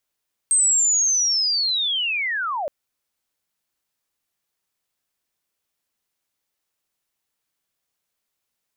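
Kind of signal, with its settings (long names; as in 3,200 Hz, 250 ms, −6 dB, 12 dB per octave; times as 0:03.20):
glide linear 8,400 Hz → 540 Hz −14 dBFS → −23 dBFS 2.17 s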